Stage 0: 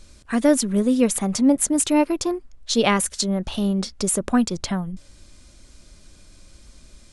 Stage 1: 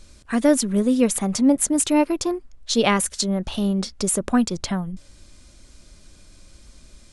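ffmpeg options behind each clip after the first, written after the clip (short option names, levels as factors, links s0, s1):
-af anull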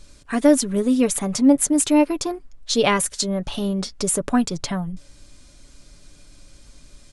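-af "aecho=1:1:7:0.39"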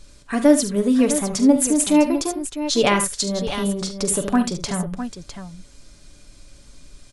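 -af "aecho=1:1:44|70|75|655:0.251|0.141|0.237|0.299"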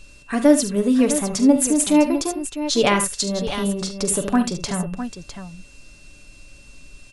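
-af "aeval=exprs='val(0)+0.00316*sin(2*PI*2700*n/s)':c=same"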